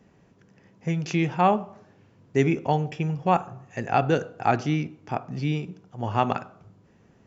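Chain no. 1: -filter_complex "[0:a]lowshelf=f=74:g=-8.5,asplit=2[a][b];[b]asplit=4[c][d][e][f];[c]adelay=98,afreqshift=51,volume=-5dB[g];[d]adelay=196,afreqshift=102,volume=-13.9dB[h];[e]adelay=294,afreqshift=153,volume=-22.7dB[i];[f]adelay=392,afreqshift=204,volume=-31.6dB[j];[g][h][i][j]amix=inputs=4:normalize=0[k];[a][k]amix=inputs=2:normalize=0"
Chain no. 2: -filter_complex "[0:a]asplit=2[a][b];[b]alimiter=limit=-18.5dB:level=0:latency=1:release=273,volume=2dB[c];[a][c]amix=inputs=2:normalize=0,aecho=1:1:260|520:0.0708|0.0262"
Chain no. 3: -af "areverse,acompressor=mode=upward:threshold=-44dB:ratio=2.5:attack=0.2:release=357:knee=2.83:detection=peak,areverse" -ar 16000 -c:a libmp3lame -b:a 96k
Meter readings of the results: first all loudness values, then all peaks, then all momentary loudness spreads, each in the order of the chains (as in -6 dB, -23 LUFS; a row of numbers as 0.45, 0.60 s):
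-25.0, -22.0, -26.5 LUFS; -6.0, -4.5, -7.5 dBFS; 12, 10, 12 LU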